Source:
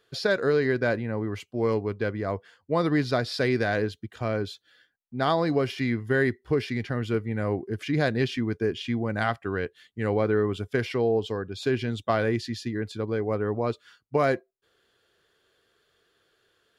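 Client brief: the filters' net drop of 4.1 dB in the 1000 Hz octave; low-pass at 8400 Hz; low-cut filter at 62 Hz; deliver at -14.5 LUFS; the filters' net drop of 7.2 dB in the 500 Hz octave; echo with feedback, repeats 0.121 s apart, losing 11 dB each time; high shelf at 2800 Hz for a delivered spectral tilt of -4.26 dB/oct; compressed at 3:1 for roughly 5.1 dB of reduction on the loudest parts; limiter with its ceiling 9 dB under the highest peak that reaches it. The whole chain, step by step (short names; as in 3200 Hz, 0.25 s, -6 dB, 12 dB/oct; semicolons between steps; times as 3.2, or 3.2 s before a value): HPF 62 Hz; LPF 8400 Hz; bell 500 Hz -8.5 dB; bell 1000 Hz -3.5 dB; high shelf 2800 Hz +6 dB; compressor 3:1, threshold -29 dBFS; limiter -26.5 dBFS; feedback echo 0.121 s, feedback 28%, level -11 dB; gain +22 dB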